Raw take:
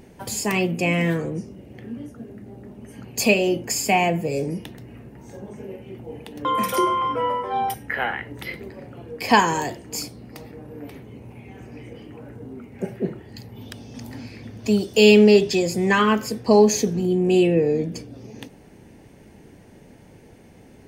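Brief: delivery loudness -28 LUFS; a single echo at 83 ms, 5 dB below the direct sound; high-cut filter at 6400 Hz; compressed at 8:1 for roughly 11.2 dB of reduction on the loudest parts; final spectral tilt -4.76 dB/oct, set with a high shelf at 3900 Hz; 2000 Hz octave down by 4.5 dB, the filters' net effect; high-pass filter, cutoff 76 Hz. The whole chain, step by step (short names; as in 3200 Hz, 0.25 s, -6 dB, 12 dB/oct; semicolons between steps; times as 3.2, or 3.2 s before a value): HPF 76 Hz; LPF 6400 Hz; bell 2000 Hz -7 dB; high shelf 3900 Hz +3 dB; compressor 8:1, threshold -21 dBFS; echo 83 ms -5 dB; gain -1 dB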